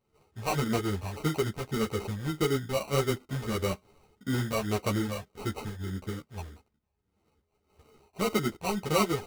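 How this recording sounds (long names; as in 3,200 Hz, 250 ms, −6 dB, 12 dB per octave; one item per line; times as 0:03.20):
a buzz of ramps at a fixed pitch in blocks of 8 samples
phaser sweep stages 8, 1.7 Hz, lowest notch 310–4,700 Hz
aliases and images of a low sample rate 1,700 Hz, jitter 0%
a shimmering, thickened sound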